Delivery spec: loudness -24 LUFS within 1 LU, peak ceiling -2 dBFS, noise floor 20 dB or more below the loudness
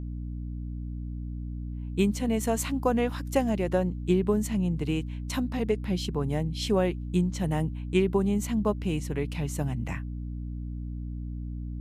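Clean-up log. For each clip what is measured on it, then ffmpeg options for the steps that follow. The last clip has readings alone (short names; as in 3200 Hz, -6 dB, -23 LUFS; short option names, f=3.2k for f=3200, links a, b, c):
hum 60 Hz; harmonics up to 300 Hz; hum level -32 dBFS; loudness -29.5 LUFS; peak -11.0 dBFS; loudness target -24.0 LUFS
-> -af "bandreject=f=60:t=h:w=6,bandreject=f=120:t=h:w=6,bandreject=f=180:t=h:w=6,bandreject=f=240:t=h:w=6,bandreject=f=300:t=h:w=6"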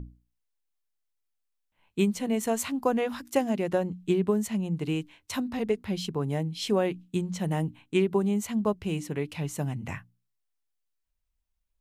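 hum none; loudness -29.0 LUFS; peak -11.5 dBFS; loudness target -24.0 LUFS
-> -af "volume=5dB"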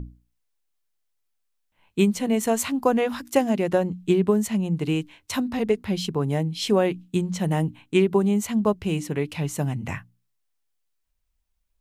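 loudness -24.0 LUFS; peak -6.5 dBFS; noise floor -74 dBFS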